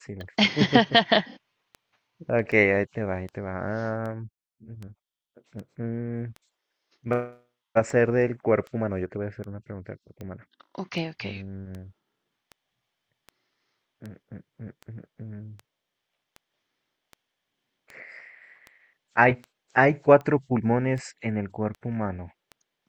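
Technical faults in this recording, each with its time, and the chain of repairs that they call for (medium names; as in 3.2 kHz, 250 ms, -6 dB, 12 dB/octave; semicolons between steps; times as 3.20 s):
tick 78 rpm -26 dBFS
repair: de-click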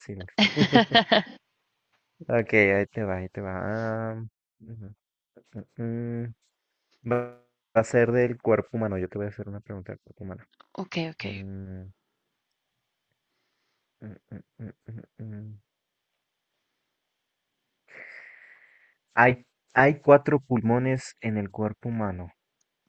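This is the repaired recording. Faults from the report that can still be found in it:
nothing left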